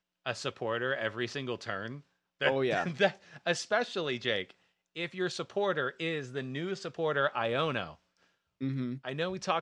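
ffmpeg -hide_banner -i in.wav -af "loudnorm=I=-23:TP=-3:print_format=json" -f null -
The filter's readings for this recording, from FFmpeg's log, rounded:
"input_i" : "-32.9",
"input_tp" : "-11.8",
"input_lra" : "1.8",
"input_thresh" : "-43.2",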